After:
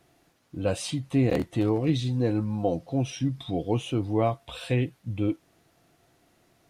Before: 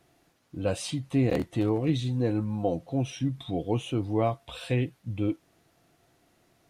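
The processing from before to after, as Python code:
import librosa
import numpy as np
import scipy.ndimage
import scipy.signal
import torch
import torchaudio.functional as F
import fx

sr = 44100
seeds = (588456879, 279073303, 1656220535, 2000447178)

y = fx.peak_eq(x, sr, hz=5000.0, db=6.0, octaves=0.3, at=(1.65, 3.98))
y = F.gain(torch.from_numpy(y), 1.5).numpy()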